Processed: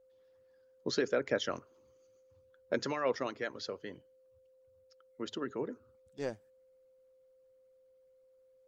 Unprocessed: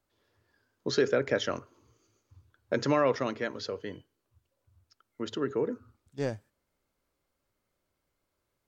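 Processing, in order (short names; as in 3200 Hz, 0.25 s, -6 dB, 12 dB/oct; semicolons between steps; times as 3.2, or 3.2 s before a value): harmonic-percussive split harmonic -12 dB; whine 520 Hz -60 dBFS; gain -3 dB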